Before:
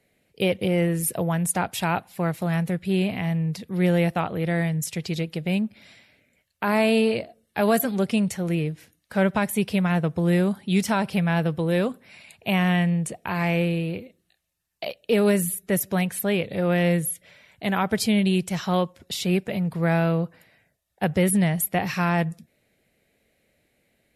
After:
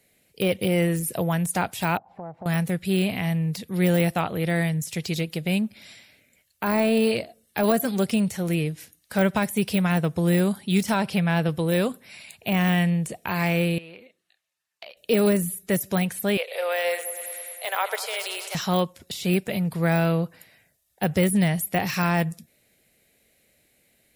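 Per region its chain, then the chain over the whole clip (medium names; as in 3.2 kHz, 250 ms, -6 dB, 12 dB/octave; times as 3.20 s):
1.97–2.46 s: resonant low-pass 810 Hz, resonance Q 3.9 + compression 2.5:1, threshold -41 dBFS
10.94–11.49 s: high-pass 52 Hz + treble shelf 8.7 kHz -11.5 dB
13.78–14.97 s: band-pass filter 1.4 kHz, Q 0.66 + compression, threshold -40 dBFS
16.37–18.55 s: de-esser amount 40% + steep high-pass 470 Hz 48 dB/octave + multi-head delay 103 ms, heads first and second, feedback 63%, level -16 dB
whole clip: de-esser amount 90%; treble shelf 4 kHz +12 dB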